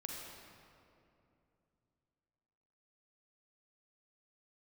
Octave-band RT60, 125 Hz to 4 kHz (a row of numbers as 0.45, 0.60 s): 3.7, 3.4, 2.9, 2.5, 2.1, 1.6 s